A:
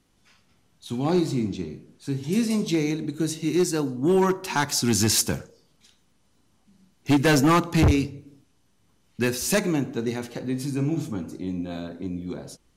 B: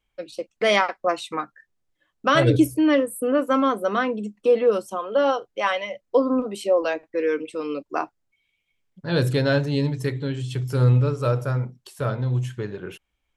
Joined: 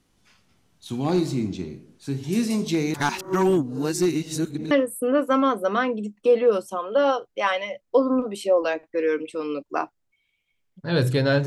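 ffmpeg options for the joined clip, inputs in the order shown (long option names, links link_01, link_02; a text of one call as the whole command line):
ffmpeg -i cue0.wav -i cue1.wav -filter_complex "[0:a]apad=whole_dur=11.46,atrim=end=11.46,asplit=2[link_01][link_02];[link_01]atrim=end=2.942[link_03];[link_02]atrim=start=2.938:end=4.712,asetpts=PTS-STARTPTS,areverse[link_04];[1:a]atrim=start=2.908:end=9.66[link_05];[link_03][link_04]acrossfade=duration=0.004:curve1=hsin:curve2=hsin[link_06];[link_06][link_05]acrossfade=duration=0.004:curve1=hsin:curve2=hsin" out.wav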